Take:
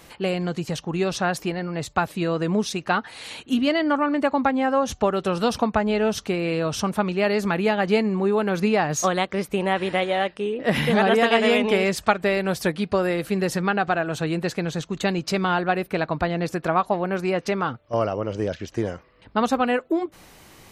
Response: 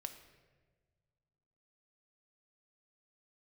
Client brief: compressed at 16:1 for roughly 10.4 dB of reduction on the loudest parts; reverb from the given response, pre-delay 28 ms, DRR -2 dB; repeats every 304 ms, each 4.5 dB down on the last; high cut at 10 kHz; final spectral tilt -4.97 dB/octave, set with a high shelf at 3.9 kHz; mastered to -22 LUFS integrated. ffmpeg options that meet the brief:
-filter_complex "[0:a]lowpass=10000,highshelf=f=3900:g=-4,acompressor=threshold=0.0631:ratio=16,aecho=1:1:304|608|912|1216|1520|1824|2128|2432|2736:0.596|0.357|0.214|0.129|0.0772|0.0463|0.0278|0.0167|0.01,asplit=2[s0][s1];[1:a]atrim=start_sample=2205,adelay=28[s2];[s1][s2]afir=irnorm=-1:irlink=0,volume=1.88[s3];[s0][s3]amix=inputs=2:normalize=0,volume=1.19"

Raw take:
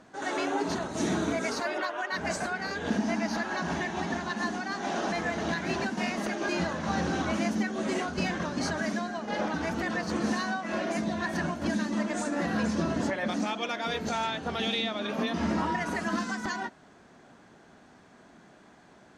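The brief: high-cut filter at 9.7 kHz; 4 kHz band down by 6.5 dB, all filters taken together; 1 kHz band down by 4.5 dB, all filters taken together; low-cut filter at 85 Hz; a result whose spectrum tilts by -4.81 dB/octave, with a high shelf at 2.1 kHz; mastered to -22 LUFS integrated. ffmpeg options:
-af "highpass=85,lowpass=9700,equalizer=f=1000:t=o:g=-5,highshelf=f=2100:g=-5,equalizer=f=4000:t=o:g=-3,volume=3.35"

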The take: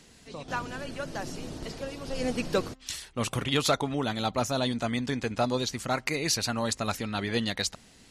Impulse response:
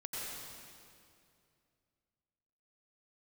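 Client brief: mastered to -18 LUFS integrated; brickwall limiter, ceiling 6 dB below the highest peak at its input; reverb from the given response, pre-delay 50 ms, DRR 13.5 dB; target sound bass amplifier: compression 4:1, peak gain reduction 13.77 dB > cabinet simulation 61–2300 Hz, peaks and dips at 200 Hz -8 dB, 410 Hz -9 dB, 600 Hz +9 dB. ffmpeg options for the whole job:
-filter_complex "[0:a]alimiter=limit=0.1:level=0:latency=1,asplit=2[s0][s1];[1:a]atrim=start_sample=2205,adelay=50[s2];[s1][s2]afir=irnorm=-1:irlink=0,volume=0.178[s3];[s0][s3]amix=inputs=2:normalize=0,acompressor=threshold=0.00891:ratio=4,highpass=f=61:w=0.5412,highpass=f=61:w=1.3066,equalizer=f=200:t=q:w=4:g=-8,equalizer=f=410:t=q:w=4:g=-9,equalizer=f=600:t=q:w=4:g=9,lowpass=f=2300:w=0.5412,lowpass=f=2300:w=1.3066,volume=18.8"

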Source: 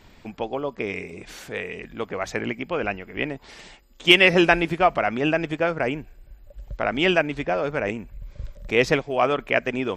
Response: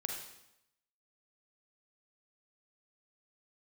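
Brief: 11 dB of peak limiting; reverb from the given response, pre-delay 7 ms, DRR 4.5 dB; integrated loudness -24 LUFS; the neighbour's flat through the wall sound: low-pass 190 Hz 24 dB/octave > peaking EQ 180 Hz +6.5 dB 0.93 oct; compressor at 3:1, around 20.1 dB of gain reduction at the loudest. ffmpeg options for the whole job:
-filter_complex "[0:a]acompressor=threshold=0.0141:ratio=3,alimiter=level_in=1.88:limit=0.0631:level=0:latency=1,volume=0.531,asplit=2[s0][s1];[1:a]atrim=start_sample=2205,adelay=7[s2];[s1][s2]afir=irnorm=-1:irlink=0,volume=0.531[s3];[s0][s3]amix=inputs=2:normalize=0,lowpass=f=190:w=0.5412,lowpass=f=190:w=1.3066,equalizer=f=180:t=o:w=0.93:g=6.5,volume=12.6"

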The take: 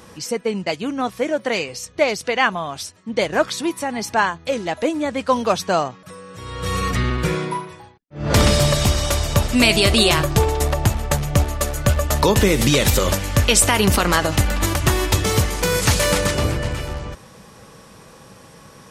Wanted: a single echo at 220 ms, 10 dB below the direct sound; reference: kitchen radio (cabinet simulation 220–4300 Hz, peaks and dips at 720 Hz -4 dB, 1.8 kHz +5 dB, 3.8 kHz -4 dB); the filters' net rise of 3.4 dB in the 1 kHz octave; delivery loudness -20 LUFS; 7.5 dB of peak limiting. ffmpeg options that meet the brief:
-af "equalizer=f=1000:t=o:g=5,alimiter=limit=0.398:level=0:latency=1,highpass=220,equalizer=f=720:t=q:w=4:g=-4,equalizer=f=1800:t=q:w=4:g=5,equalizer=f=3800:t=q:w=4:g=-4,lowpass=f=4300:w=0.5412,lowpass=f=4300:w=1.3066,aecho=1:1:220:0.316,volume=1.26"

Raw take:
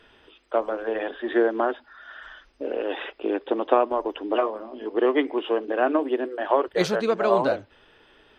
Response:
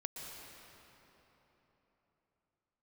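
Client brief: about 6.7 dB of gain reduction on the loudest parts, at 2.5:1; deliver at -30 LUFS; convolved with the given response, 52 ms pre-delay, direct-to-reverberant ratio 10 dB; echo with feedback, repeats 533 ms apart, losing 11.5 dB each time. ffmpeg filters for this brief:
-filter_complex "[0:a]acompressor=threshold=0.0631:ratio=2.5,aecho=1:1:533|1066|1599:0.266|0.0718|0.0194,asplit=2[s0][s1];[1:a]atrim=start_sample=2205,adelay=52[s2];[s1][s2]afir=irnorm=-1:irlink=0,volume=0.355[s3];[s0][s3]amix=inputs=2:normalize=0,volume=0.891"

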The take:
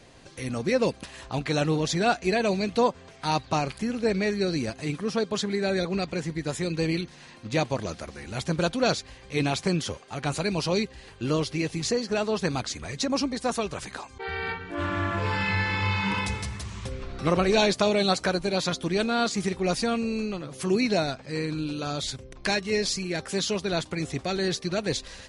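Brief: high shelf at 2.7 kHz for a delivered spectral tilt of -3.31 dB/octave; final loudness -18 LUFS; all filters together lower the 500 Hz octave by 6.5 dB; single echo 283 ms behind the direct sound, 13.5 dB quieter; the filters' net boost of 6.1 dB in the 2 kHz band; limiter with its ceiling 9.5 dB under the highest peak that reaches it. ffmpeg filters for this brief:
-af "equalizer=f=500:t=o:g=-9,equalizer=f=2000:t=o:g=5.5,highshelf=f=2700:g=6,alimiter=limit=0.15:level=0:latency=1,aecho=1:1:283:0.211,volume=2.99"

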